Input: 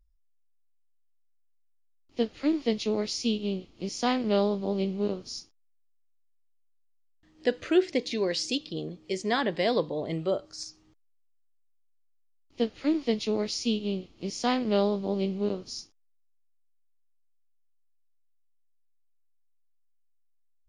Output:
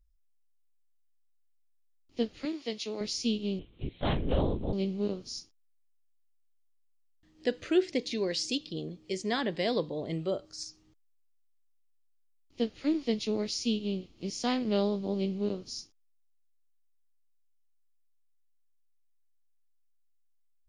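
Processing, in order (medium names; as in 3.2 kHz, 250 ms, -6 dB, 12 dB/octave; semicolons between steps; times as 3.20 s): 2.45–3.01 s: high-pass 630 Hz 6 dB/octave; 3.59–4.73 s: LPC vocoder at 8 kHz whisper; peaking EQ 990 Hz -5 dB 2.4 oct; trim -1 dB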